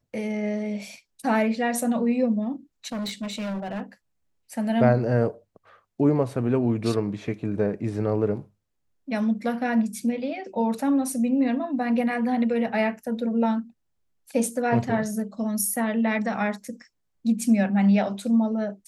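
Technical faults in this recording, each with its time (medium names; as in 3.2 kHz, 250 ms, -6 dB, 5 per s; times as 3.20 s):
2.92–3.82 s: clipped -27.5 dBFS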